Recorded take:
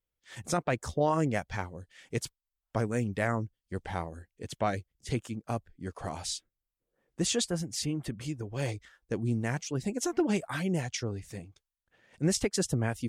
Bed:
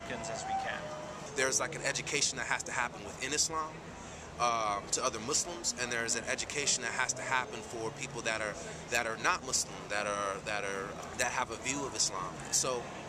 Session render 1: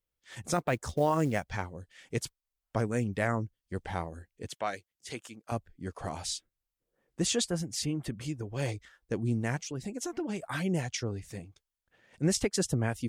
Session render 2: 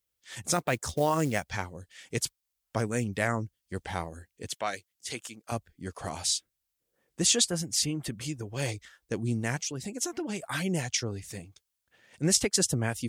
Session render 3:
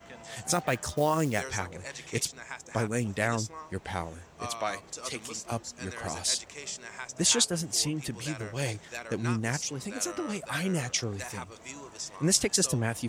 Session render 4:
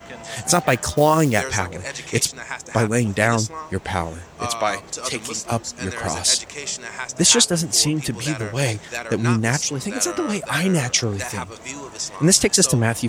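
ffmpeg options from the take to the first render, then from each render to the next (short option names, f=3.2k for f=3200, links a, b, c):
-filter_complex "[0:a]asettb=1/sr,asplit=3[a][b][c];[a]atrim=end=0.534[d];[b]atrim=start=0.53:end=1.44,asetpts=PTS-STARTPTS,afade=t=in:d=0.004:c=qsin,afade=t=out:st=0.906:d=0.004:c=qsin,acrusher=bits=7:mode=log:mix=0:aa=0.000001[e];[c]atrim=start=1.436[f];[d][e]acrossfade=d=0.004:c1=hsin:c2=qsin[g];[g][f]acrossfade=d=0.004:c1=qsin:c2=hsin,asettb=1/sr,asplit=3[h][i][j];[h]atrim=end=4.484[k];[i]atrim=start=4.48:end=5.52,asetpts=PTS-STARTPTS,afade=t=in:d=0.004:c=qsin,afade=t=out:st=1.036:d=0.004:c=qsin,highpass=f=800:p=1[l];[j]atrim=start=5.516[m];[k][l]acrossfade=d=0.004:c1=hsin:c2=qsin[n];[n][m]acrossfade=d=0.004:c1=qsin:c2=hsin,asettb=1/sr,asplit=3[o][p][q];[o]atrim=end=9.564[r];[p]atrim=start=9.56:end=10.43,asetpts=PTS-STARTPTS,afade=t=in:d=0.004:c=qsin,afade=t=out:st=0.866:d=0.004:c=qsin,acompressor=threshold=-36dB:ratio=2:attack=3.2:release=140:knee=1:detection=peak[s];[q]atrim=start=10.426[t];[r][s]acrossfade=d=0.004:c1=hsin:c2=qsin[u];[u][t]acrossfade=d=0.004:c1=qsin:c2=hsin"
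-af "highpass=46,highshelf=f=2.5k:g=9"
-filter_complex "[1:a]volume=-8dB[a];[0:a][a]amix=inputs=2:normalize=0"
-af "volume=10.5dB,alimiter=limit=-2dB:level=0:latency=1"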